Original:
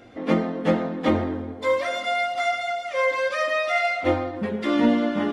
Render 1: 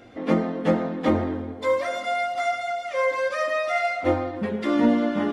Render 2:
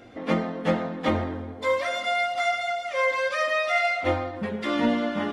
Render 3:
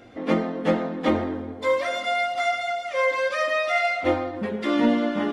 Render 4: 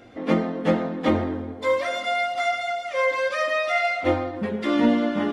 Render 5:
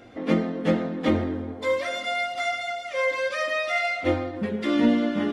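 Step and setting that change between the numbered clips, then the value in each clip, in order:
dynamic equaliser, frequency: 3,100, 320, 110, 9,100, 910 Hertz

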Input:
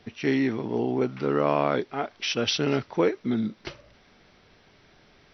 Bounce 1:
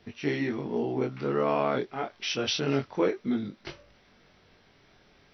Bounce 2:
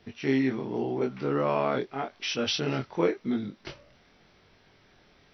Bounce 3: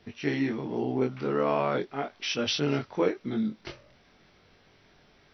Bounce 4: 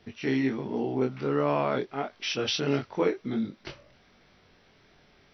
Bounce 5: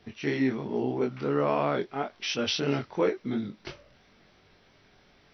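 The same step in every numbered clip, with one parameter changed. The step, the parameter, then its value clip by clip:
chorus effect, speed: 0.27, 0.86, 0.4, 1.4, 2.9 Hertz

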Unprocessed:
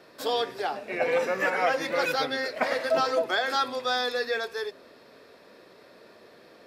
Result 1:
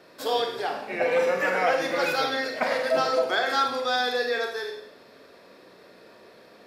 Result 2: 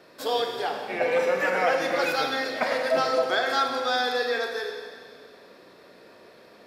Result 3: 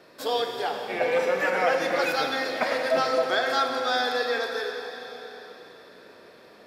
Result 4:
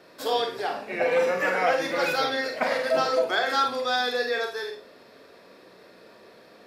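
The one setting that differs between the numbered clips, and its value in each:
four-comb reverb, RT60: 0.67, 1.9, 3.9, 0.32 seconds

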